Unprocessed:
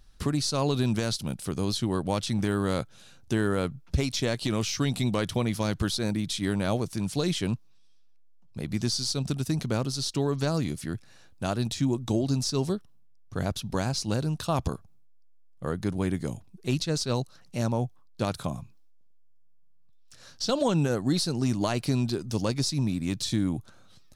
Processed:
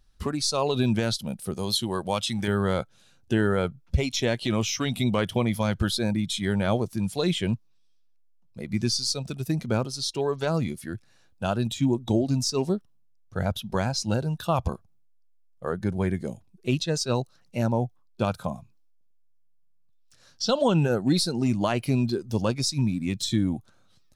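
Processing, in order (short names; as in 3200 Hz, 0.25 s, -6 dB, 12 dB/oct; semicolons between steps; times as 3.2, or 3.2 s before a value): rattling part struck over -23 dBFS, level -37 dBFS; spectral noise reduction 10 dB; 1.54–2.48 tilt +2 dB/oct; gain +3.5 dB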